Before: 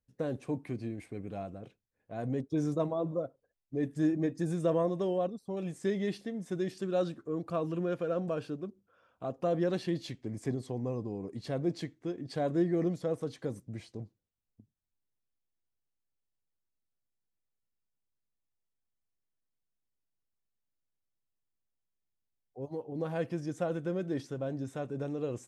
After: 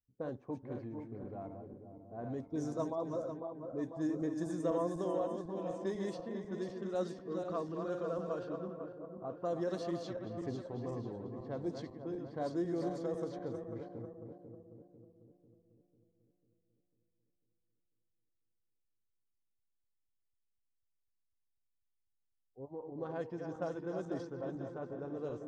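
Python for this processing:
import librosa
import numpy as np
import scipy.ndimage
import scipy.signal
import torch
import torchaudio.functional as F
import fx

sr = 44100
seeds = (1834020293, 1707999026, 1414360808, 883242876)

y = fx.reverse_delay_fb(x, sr, ms=248, feedback_pct=72, wet_db=-6)
y = fx.env_lowpass(y, sr, base_hz=330.0, full_db=-25.5)
y = fx.graphic_eq_15(y, sr, hz=(160, 1000, 2500, 6300), db=(-4, 5, -8, 6))
y = F.gain(torch.from_numpy(y), -6.5).numpy()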